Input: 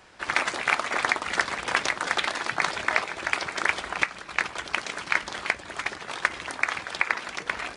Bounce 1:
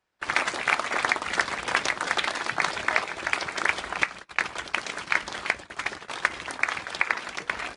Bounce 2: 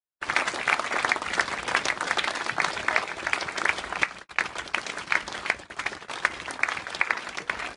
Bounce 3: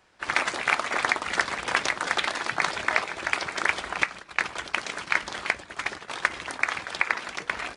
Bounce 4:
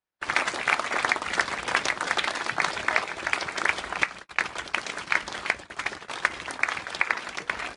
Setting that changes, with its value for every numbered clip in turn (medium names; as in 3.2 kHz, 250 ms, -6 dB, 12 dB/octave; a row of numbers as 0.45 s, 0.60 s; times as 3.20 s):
gate, range: -26 dB, -52 dB, -9 dB, -39 dB